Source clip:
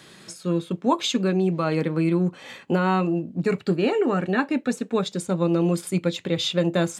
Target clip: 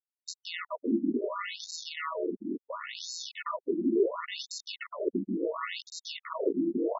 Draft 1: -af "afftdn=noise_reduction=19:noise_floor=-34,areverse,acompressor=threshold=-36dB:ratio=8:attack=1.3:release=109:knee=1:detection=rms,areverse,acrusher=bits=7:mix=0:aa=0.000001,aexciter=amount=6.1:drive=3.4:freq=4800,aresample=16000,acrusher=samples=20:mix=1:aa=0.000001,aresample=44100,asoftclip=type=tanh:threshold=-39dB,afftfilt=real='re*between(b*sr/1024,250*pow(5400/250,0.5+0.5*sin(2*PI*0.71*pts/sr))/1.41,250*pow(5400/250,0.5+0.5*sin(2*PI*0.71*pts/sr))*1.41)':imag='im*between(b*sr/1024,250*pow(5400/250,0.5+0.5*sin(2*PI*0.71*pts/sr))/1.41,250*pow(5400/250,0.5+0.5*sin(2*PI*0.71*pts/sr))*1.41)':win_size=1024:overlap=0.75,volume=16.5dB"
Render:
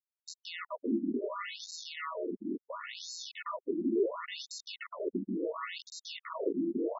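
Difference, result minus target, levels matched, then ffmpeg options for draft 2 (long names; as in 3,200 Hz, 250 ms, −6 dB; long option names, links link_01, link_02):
soft clipping: distortion +9 dB
-af "afftdn=noise_reduction=19:noise_floor=-34,areverse,acompressor=threshold=-36dB:ratio=8:attack=1.3:release=109:knee=1:detection=rms,areverse,acrusher=bits=7:mix=0:aa=0.000001,aexciter=amount=6.1:drive=3.4:freq=4800,aresample=16000,acrusher=samples=20:mix=1:aa=0.000001,aresample=44100,asoftclip=type=tanh:threshold=-30dB,afftfilt=real='re*between(b*sr/1024,250*pow(5400/250,0.5+0.5*sin(2*PI*0.71*pts/sr))/1.41,250*pow(5400/250,0.5+0.5*sin(2*PI*0.71*pts/sr))*1.41)':imag='im*between(b*sr/1024,250*pow(5400/250,0.5+0.5*sin(2*PI*0.71*pts/sr))/1.41,250*pow(5400/250,0.5+0.5*sin(2*PI*0.71*pts/sr))*1.41)':win_size=1024:overlap=0.75,volume=16.5dB"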